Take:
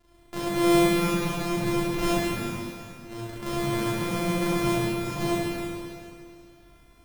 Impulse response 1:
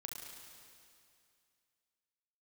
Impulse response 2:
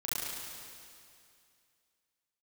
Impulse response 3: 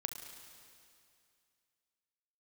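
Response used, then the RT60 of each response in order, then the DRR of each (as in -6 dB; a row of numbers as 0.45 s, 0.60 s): 2; 2.4 s, 2.4 s, 2.4 s; 0.5 dB, -8.5 dB, 5.5 dB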